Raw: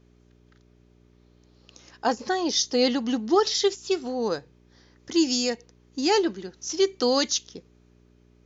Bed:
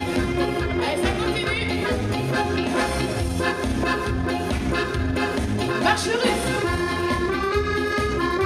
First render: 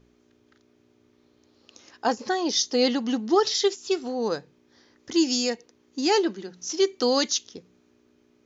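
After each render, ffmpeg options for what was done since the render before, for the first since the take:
-af "bandreject=f=60:t=h:w=4,bandreject=f=120:t=h:w=4,bandreject=f=180:t=h:w=4"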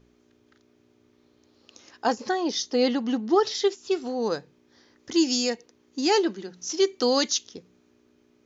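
-filter_complex "[0:a]asettb=1/sr,asplit=3[a][b][c];[a]atrim=end=2.314[d];[b]atrim=start=2.31:end=3.96,asetpts=PTS-STARTPTS,afade=t=in:d=0.004:c=qsin,afade=t=out:st=1.646:d=0.004:c=qsin,highshelf=f=4.1k:g=-9[e];[c]atrim=start=3.956[f];[d][e]acrossfade=d=0.004:c1=hsin:c2=qsin[g];[g][f]acrossfade=d=0.004:c1=qsin:c2=hsin"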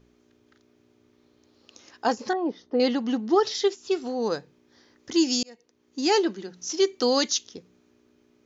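-filter_complex "[0:a]asettb=1/sr,asplit=3[a][b][c];[a]atrim=end=2.334[d];[b]atrim=start=2.33:end=2.8,asetpts=PTS-STARTPTS,afade=t=in:d=0.004:c=qsin,afade=t=out:st=0.466:d=0.004:c=qsin,lowpass=1.1k[e];[c]atrim=start=2.796[f];[d][e]acrossfade=d=0.004:c1=hsin:c2=qsin[g];[g][f]acrossfade=d=0.004:c1=qsin:c2=hsin,asplit=2[h][i];[h]atrim=end=5.43,asetpts=PTS-STARTPTS,afade=t=out:st=5.426:d=0.004:c=hsin[j];[i]atrim=start=5.43,asetpts=PTS-STARTPTS,afade=t=in:d=0.65[k];[j][k]concat=n=2:v=0:a=1"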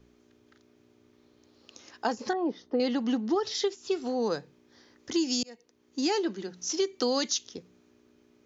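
-filter_complex "[0:a]acrossover=split=170[a][b];[b]acompressor=threshold=-25dB:ratio=5[c];[a][c]amix=inputs=2:normalize=0"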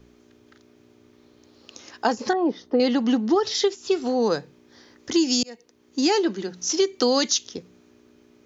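-af "volume=7dB"

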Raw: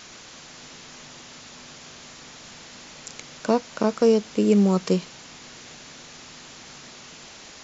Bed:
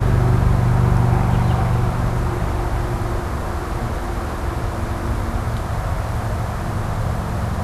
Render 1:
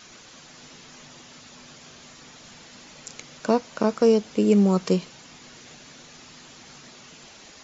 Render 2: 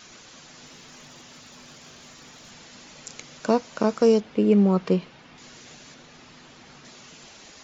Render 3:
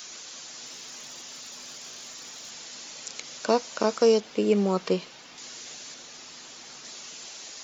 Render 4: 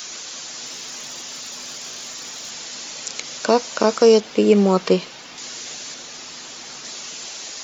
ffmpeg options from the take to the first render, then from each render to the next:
-af "afftdn=nr=6:nf=-45"
-filter_complex "[0:a]asettb=1/sr,asplit=3[a][b][c];[a]atrim=end=0.664[d];[b]atrim=start=0.66:end=2.51,asetpts=PTS-STARTPTS,afade=t=in:d=0.004:c=qsin,afade=t=out:st=1.846:d=0.004:c=qsin,asoftclip=type=hard:threshold=-40dB[e];[c]atrim=start=2.506[f];[d][e]acrossfade=d=0.004:c1=hsin:c2=qsin[g];[g][f]acrossfade=d=0.004:c1=qsin:c2=hsin,asettb=1/sr,asplit=3[h][i][j];[h]atrim=end=4.204[k];[i]atrim=start=4.2:end=5.38,asetpts=PTS-STARTPTS,afade=t=in:d=0.004:c=qsin,afade=t=out:st=1.176:d=0.004:c=qsin,lowpass=3k[l];[j]atrim=start=5.376[m];[k][l]acrossfade=d=0.004:c1=hsin:c2=qsin[n];[n][m]acrossfade=d=0.004:c1=qsin:c2=hsin,asettb=1/sr,asplit=3[o][p][q];[o]atrim=end=5.944[r];[p]atrim=start=5.94:end=6.85,asetpts=PTS-STARTPTS,afade=t=in:d=0.004:c=qsin,afade=t=out:st=0.906:d=0.004:c=qsin,aemphasis=mode=reproduction:type=50fm[s];[q]atrim=start=6.846[t];[r][s]acrossfade=d=0.004:c1=hsin:c2=qsin[u];[u][t]acrossfade=d=0.004:c1=qsin:c2=hsin"
-filter_complex "[0:a]bass=f=250:g=-11,treble=f=4k:g=15,acrossover=split=4800[a][b];[b]acompressor=threshold=-44dB:ratio=4:attack=1:release=60[c];[a][c]amix=inputs=2:normalize=0"
-af "volume=8.5dB,alimiter=limit=-3dB:level=0:latency=1"

